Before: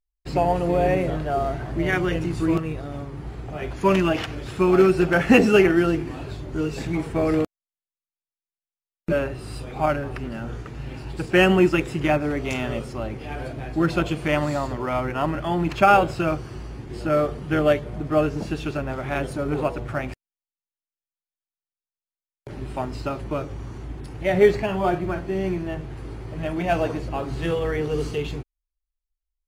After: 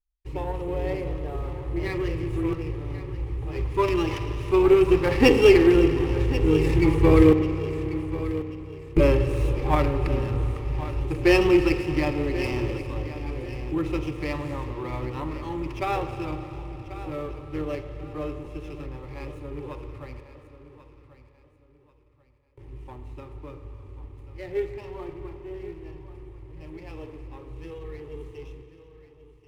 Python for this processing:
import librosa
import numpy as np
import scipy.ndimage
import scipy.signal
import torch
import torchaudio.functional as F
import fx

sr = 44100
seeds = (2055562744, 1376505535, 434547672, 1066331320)

p1 = fx.doppler_pass(x, sr, speed_mps=6, closest_m=7.5, pass_at_s=8.03)
p2 = fx.low_shelf(p1, sr, hz=170.0, db=11.5)
p3 = fx.fixed_phaser(p2, sr, hz=1000.0, stages=8)
p4 = p3 + fx.echo_feedback(p3, sr, ms=1088, feedback_pct=31, wet_db=-14, dry=0)
p5 = fx.rev_spring(p4, sr, rt60_s=3.6, pass_ms=(32, 45), chirp_ms=20, drr_db=8.0)
p6 = fx.running_max(p5, sr, window=5)
y = p6 * librosa.db_to_amplitude(8.0)